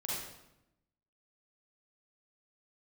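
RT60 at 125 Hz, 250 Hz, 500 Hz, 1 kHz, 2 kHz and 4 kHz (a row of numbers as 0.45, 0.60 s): 1.2, 1.2, 0.90, 0.85, 0.75, 0.70 s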